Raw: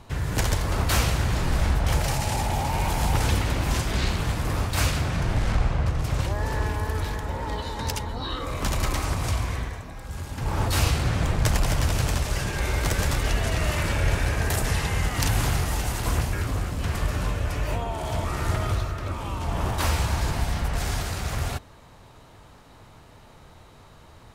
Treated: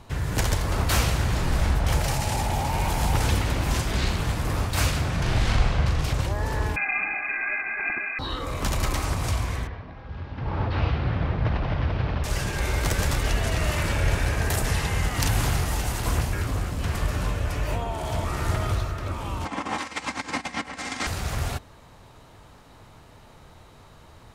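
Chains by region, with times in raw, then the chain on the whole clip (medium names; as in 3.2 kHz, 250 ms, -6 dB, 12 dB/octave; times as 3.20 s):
5.22–6.13 s: peaking EQ 3.7 kHz +6.5 dB 1.8 oct + doubling 40 ms -5.5 dB
6.76–8.19 s: bass shelf 90 Hz -11 dB + comb 2.3 ms, depth 91% + frequency inversion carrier 2.5 kHz
9.67–12.24 s: CVSD coder 32 kbps + high-pass 49 Hz + distance through air 340 m
19.45–21.07 s: comb 3.8 ms, depth 66% + compressor with a negative ratio -27 dBFS, ratio -0.5 + cabinet simulation 220–8400 Hz, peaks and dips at 270 Hz +5 dB, 540 Hz -4 dB, 1.1 kHz +3 dB, 2.1 kHz +8 dB
whole clip: none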